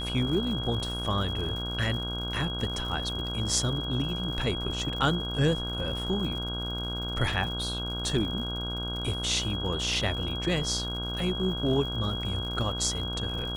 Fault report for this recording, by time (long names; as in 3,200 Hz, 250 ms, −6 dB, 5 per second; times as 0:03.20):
mains buzz 60 Hz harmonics 27 −35 dBFS
surface crackle 110 per second −37 dBFS
whistle 3,300 Hz −34 dBFS